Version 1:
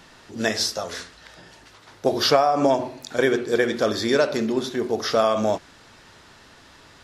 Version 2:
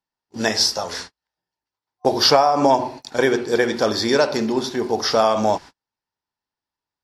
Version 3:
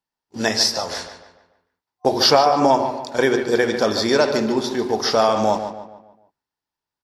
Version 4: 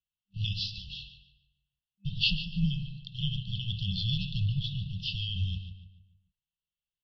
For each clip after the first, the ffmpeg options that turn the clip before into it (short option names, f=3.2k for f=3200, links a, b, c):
-af "agate=range=-44dB:threshold=-38dB:ratio=16:detection=peak,superequalizer=9b=2.24:14b=1.78,volume=2dB"
-filter_complex "[0:a]asplit=2[a][b];[b]adelay=146,lowpass=f=3.4k:p=1,volume=-9dB,asplit=2[c][d];[d]adelay=146,lowpass=f=3.4k:p=1,volume=0.43,asplit=2[e][f];[f]adelay=146,lowpass=f=3.4k:p=1,volume=0.43,asplit=2[g][h];[h]adelay=146,lowpass=f=3.4k:p=1,volume=0.43,asplit=2[i][j];[j]adelay=146,lowpass=f=3.4k:p=1,volume=0.43[k];[a][c][e][g][i][k]amix=inputs=6:normalize=0"
-af "equalizer=f=125:t=o:w=1:g=5,equalizer=f=250:t=o:w=1:g=-7,equalizer=f=500:t=o:w=1:g=-6,highpass=f=150:t=q:w=0.5412,highpass=f=150:t=q:w=1.307,lowpass=f=3.4k:t=q:w=0.5176,lowpass=f=3.4k:t=q:w=0.7071,lowpass=f=3.4k:t=q:w=1.932,afreqshift=-120,afftfilt=real='re*(1-between(b*sr/4096,200,2600))':imag='im*(1-between(b*sr/4096,200,2600))':win_size=4096:overlap=0.75,volume=1.5dB"